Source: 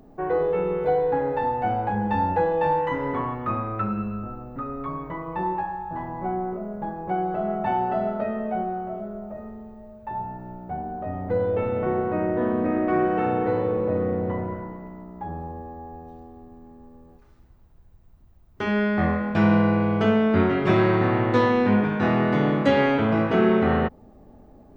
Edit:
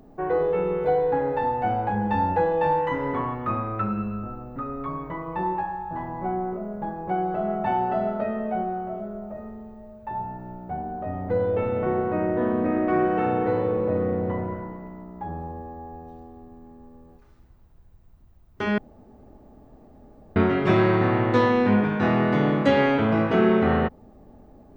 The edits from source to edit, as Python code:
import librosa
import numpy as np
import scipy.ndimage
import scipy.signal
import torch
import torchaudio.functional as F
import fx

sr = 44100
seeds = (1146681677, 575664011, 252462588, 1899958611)

y = fx.edit(x, sr, fx.room_tone_fill(start_s=18.78, length_s=1.58), tone=tone)